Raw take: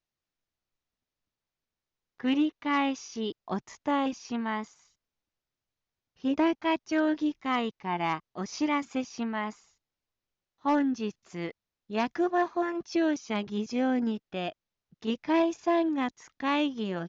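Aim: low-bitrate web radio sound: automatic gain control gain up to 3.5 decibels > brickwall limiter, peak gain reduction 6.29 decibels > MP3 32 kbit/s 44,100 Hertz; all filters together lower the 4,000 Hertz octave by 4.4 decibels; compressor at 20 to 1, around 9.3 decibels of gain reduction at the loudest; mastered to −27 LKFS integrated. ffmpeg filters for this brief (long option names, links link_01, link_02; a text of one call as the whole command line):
ffmpeg -i in.wav -af "equalizer=frequency=4000:width_type=o:gain=-6.5,acompressor=threshold=-31dB:ratio=20,dynaudnorm=maxgain=3.5dB,alimiter=level_in=5dB:limit=-24dB:level=0:latency=1,volume=-5dB,volume=12dB" -ar 44100 -c:a libmp3lame -b:a 32k out.mp3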